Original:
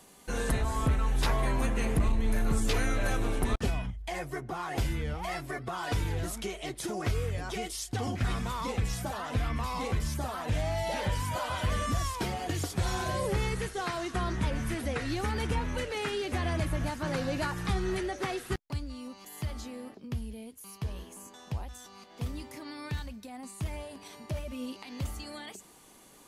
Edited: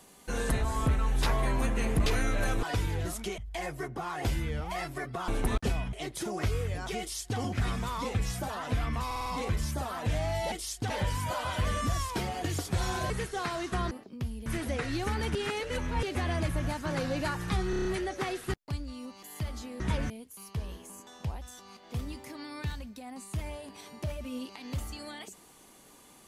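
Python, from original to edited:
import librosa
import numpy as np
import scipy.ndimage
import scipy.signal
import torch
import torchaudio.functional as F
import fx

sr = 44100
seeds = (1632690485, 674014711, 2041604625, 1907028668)

y = fx.edit(x, sr, fx.cut(start_s=2.06, length_s=0.63),
    fx.swap(start_s=3.26, length_s=0.65, other_s=5.81, other_length_s=0.75),
    fx.duplicate(start_s=7.63, length_s=0.38, to_s=10.95),
    fx.stutter(start_s=9.69, slice_s=0.05, count=5),
    fx.cut(start_s=13.15, length_s=0.37),
    fx.swap(start_s=14.33, length_s=0.3, other_s=19.82, other_length_s=0.55),
    fx.reverse_span(start_s=15.52, length_s=0.68),
    fx.stutter(start_s=17.87, slice_s=0.03, count=6), tone=tone)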